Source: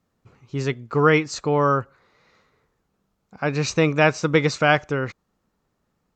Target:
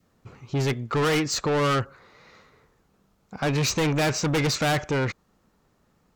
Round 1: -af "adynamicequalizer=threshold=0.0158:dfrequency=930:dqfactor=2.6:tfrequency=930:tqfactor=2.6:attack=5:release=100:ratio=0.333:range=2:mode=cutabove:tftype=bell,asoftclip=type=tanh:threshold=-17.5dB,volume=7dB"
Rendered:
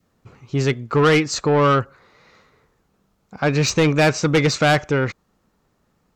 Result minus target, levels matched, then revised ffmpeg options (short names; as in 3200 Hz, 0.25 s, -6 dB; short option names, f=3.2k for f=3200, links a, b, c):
soft clip: distortion -6 dB
-af "adynamicequalizer=threshold=0.0158:dfrequency=930:dqfactor=2.6:tfrequency=930:tqfactor=2.6:attack=5:release=100:ratio=0.333:range=2:mode=cutabove:tftype=bell,asoftclip=type=tanh:threshold=-27.5dB,volume=7dB"